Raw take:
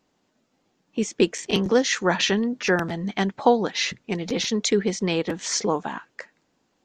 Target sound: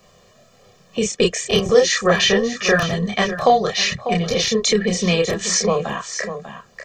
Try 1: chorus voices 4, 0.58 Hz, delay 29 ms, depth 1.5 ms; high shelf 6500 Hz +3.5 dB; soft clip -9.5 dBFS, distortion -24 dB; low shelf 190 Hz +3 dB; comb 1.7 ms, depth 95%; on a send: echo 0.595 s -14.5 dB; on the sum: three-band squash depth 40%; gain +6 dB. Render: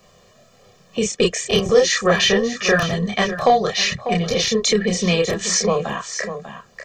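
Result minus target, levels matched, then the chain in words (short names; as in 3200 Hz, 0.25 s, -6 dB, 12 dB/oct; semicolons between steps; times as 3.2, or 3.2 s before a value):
soft clip: distortion +11 dB
chorus voices 4, 0.58 Hz, delay 29 ms, depth 1.5 ms; high shelf 6500 Hz +3.5 dB; soft clip -3 dBFS, distortion -36 dB; low shelf 190 Hz +3 dB; comb 1.7 ms, depth 95%; on a send: echo 0.595 s -14.5 dB; on the sum: three-band squash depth 40%; gain +6 dB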